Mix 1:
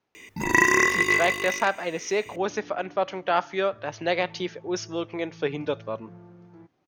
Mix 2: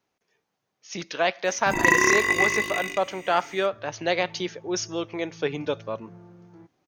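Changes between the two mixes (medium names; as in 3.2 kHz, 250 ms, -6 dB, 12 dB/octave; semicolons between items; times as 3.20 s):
speech: remove distance through air 100 m; first sound: entry +1.30 s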